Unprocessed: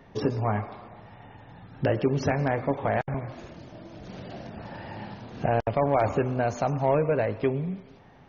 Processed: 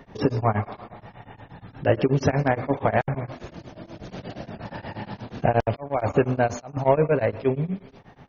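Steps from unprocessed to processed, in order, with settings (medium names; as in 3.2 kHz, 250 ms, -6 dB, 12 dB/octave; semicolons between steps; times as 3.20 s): 5.51–6.77 s: slow attack 426 ms; tremolo of two beating tones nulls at 8.4 Hz; trim +6.5 dB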